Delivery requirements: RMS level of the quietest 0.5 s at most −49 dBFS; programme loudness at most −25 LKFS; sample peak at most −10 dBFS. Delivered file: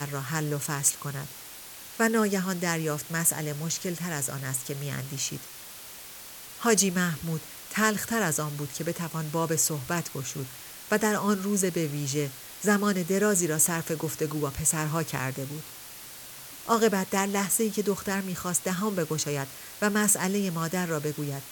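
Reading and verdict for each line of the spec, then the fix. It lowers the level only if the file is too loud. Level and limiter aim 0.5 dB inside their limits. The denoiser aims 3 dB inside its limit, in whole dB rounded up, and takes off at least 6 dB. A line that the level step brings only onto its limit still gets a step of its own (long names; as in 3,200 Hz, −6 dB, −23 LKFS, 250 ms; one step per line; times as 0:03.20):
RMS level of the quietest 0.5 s −44 dBFS: out of spec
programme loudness −27.5 LKFS: in spec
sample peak −7.5 dBFS: out of spec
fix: broadband denoise 8 dB, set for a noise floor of −44 dBFS
brickwall limiter −10.5 dBFS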